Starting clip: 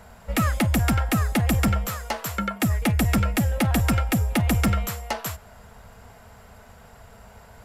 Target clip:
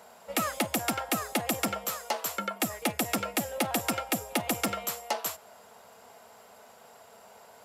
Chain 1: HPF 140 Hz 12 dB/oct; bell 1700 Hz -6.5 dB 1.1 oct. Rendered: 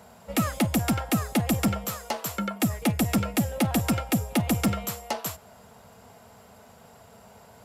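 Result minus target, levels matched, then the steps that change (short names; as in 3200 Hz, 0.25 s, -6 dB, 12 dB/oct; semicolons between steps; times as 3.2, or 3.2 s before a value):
125 Hz band +11.5 dB
change: HPF 400 Hz 12 dB/oct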